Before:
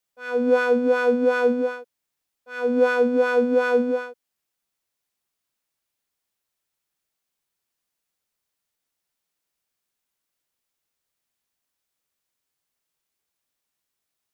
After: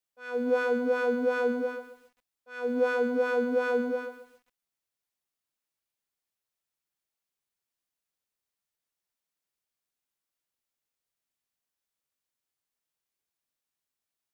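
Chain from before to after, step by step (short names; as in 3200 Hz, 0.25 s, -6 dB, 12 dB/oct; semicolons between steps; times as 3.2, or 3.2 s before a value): lo-fi delay 0.135 s, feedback 35%, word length 8-bit, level -11.5 dB; gain -7.5 dB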